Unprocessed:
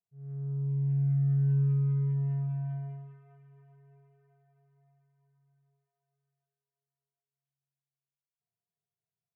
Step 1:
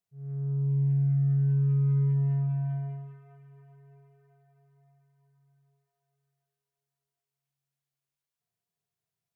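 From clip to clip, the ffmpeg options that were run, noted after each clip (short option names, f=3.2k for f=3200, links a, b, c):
-af "alimiter=level_in=1dB:limit=-24dB:level=0:latency=1,volume=-1dB,volume=4dB"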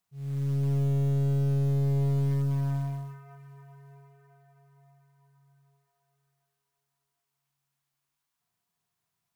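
-af "equalizer=f=125:t=o:w=1:g=-4,equalizer=f=250:t=o:w=1:g=4,equalizer=f=500:t=o:w=1:g=-8,equalizer=f=1k:t=o:w=1:g=7,aeval=exprs='(tanh(35.5*val(0)+0.35)-tanh(0.35))/35.5':c=same,acrusher=bits=7:mode=log:mix=0:aa=0.000001,volume=7.5dB"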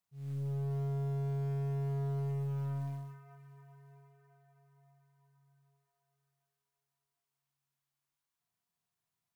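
-af "asoftclip=type=hard:threshold=-26.5dB,volume=-6.5dB"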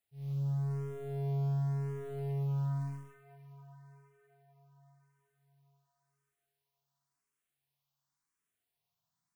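-filter_complex "[0:a]asplit=2[a][b];[b]afreqshift=0.93[c];[a][c]amix=inputs=2:normalize=1,volume=3.5dB"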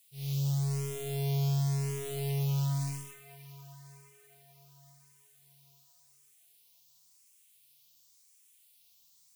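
-af "aexciter=amount=4:drive=9.3:freq=2.3k,volume=3dB"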